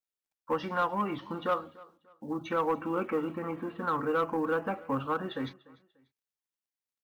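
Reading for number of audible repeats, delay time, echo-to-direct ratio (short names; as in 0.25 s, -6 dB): 2, 0.294 s, -21.5 dB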